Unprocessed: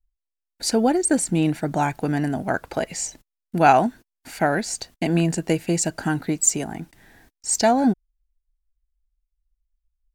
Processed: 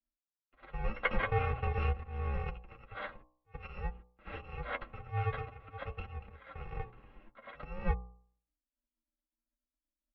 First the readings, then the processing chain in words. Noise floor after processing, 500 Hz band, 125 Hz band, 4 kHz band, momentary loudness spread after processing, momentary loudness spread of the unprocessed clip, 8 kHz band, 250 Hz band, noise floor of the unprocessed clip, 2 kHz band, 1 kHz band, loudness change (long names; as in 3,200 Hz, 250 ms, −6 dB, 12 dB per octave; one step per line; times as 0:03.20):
below −85 dBFS, −18.0 dB, −9.5 dB, −20.5 dB, 17 LU, 11 LU, below −40 dB, −27.5 dB, −84 dBFS, −11.0 dB, −18.0 dB, −16.5 dB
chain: samples in bit-reversed order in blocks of 128 samples
high-pass filter 48 Hz 12 dB per octave
echo ahead of the sound 87 ms −17 dB
in parallel at +1 dB: downward compressor 6 to 1, threshold −31 dBFS, peak gain reduction 19.5 dB
on the sum: noise gate with hold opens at −43 dBFS
volume swells 399 ms
Bessel low-pass filter 1,500 Hz, order 8
flanger 0.49 Hz, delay 6.8 ms, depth 4 ms, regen +27%
hum removal 62.95 Hz, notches 20
frequency shifter −69 Hz
comb filter 3.7 ms, depth 43%
level +3 dB